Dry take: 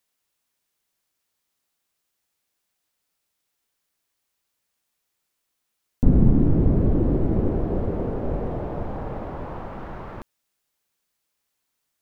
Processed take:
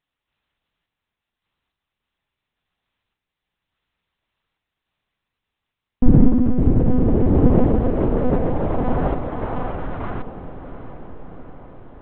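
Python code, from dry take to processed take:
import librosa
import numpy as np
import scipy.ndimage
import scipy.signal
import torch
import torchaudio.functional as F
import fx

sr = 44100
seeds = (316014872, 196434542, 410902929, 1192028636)

p1 = fx.rider(x, sr, range_db=4, speed_s=0.5)
p2 = x + (p1 * librosa.db_to_amplitude(2.5))
p3 = fx.tremolo_random(p2, sr, seeds[0], hz=3.5, depth_pct=55)
p4 = fx.lpc_monotone(p3, sr, seeds[1], pitch_hz=250.0, order=8)
p5 = fx.echo_diffused(p4, sr, ms=739, feedback_pct=61, wet_db=-13)
y = p5 * librosa.db_to_amplitude(1.0)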